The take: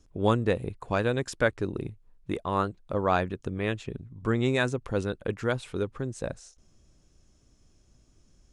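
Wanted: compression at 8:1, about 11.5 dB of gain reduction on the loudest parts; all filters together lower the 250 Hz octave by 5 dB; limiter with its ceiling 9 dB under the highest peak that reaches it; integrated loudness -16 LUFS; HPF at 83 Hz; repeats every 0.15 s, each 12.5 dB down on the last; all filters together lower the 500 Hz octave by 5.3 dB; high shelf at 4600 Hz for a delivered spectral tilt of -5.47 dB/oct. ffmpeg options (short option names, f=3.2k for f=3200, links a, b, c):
-af "highpass=83,equalizer=f=250:t=o:g=-5,equalizer=f=500:t=o:g=-5,highshelf=f=4.6k:g=-3.5,acompressor=threshold=-34dB:ratio=8,alimiter=level_in=8.5dB:limit=-24dB:level=0:latency=1,volume=-8.5dB,aecho=1:1:150|300|450:0.237|0.0569|0.0137,volume=28.5dB"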